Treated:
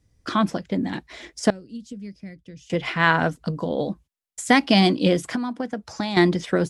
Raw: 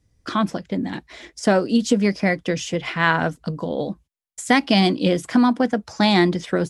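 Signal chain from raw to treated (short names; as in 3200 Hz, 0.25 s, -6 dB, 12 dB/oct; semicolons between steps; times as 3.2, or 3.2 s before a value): 1.5–2.7 passive tone stack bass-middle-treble 10-0-1; 5.25–6.17 compressor 8:1, threshold -24 dBFS, peak gain reduction 12 dB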